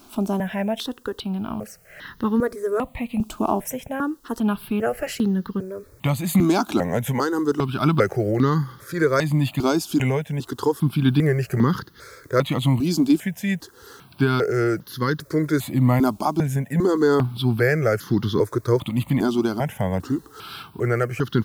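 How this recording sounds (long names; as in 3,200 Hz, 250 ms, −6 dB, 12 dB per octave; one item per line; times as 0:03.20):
a quantiser's noise floor 10 bits, dither triangular
tremolo triangle 0.65 Hz, depth 40%
notches that jump at a steady rate 2.5 Hz 500–2,400 Hz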